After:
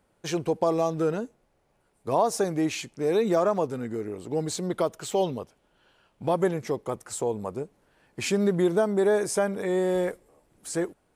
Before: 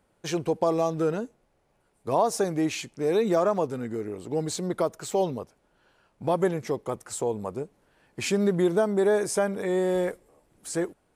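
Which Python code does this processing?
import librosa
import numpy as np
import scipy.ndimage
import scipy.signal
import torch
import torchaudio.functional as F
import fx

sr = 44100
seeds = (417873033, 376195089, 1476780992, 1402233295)

y = fx.peak_eq(x, sr, hz=3100.0, db=6.5, octaves=0.46, at=(4.69, 6.29))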